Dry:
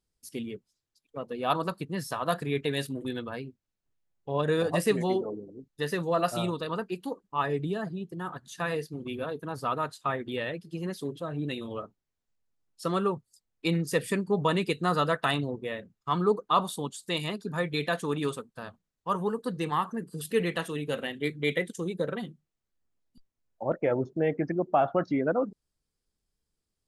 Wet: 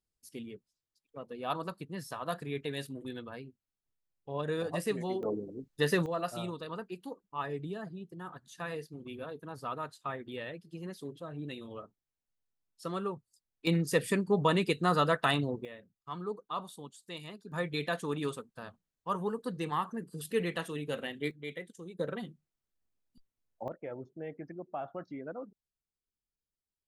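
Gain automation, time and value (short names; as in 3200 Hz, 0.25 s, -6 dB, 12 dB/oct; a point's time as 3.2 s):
-7.5 dB
from 5.23 s +2.5 dB
from 6.06 s -8 dB
from 13.67 s -1 dB
from 15.65 s -13 dB
from 17.52 s -4.5 dB
from 21.31 s -13.5 dB
from 21.99 s -4.5 dB
from 23.68 s -15 dB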